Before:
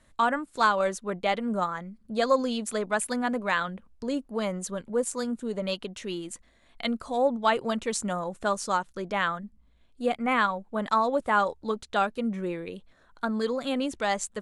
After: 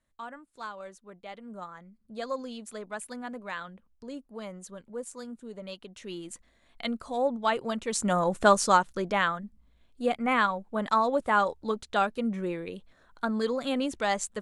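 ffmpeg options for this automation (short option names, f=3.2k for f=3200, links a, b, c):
-af "volume=8dB,afade=t=in:st=1.28:d=0.74:silence=0.473151,afade=t=in:st=5.82:d=0.5:silence=0.421697,afade=t=in:st=7.87:d=0.48:silence=0.281838,afade=t=out:st=8.35:d=0.98:silence=0.375837"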